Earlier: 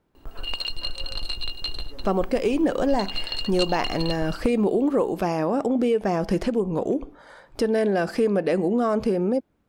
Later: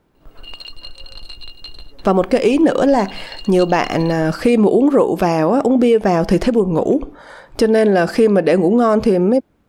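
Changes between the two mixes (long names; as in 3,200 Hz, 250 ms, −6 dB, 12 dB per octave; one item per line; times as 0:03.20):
speech +9.0 dB
background −4.5 dB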